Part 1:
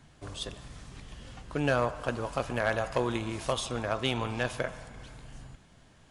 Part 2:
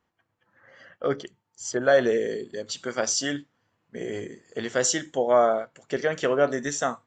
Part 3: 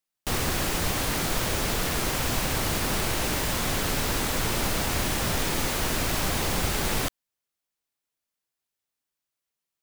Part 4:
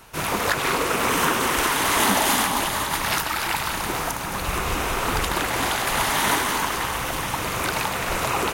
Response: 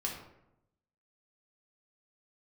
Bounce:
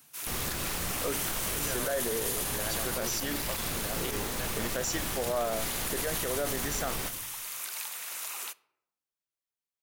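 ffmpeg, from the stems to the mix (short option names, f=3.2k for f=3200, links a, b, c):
-filter_complex "[0:a]highpass=170,volume=-10dB[a];[1:a]volume=-5.5dB[b];[2:a]volume=-11.5dB,asplit=2[c][d];[d]volume=-8dB[e];[3:a]aderivative,volume=-6.5dB,asplit=2[f][g];[g]volume=-19dB[h];[4:a]atrim=start_sample=2205[i];[e][h]amix=inputs=2:normalize=0[j];[j][i]afir=irnorm=-1:irlink=0[k];[a][b][c][f][k]amix=inputs=5:normalize=0,alimiter=limit=-21.5dB:level=0:latency=1:release=29"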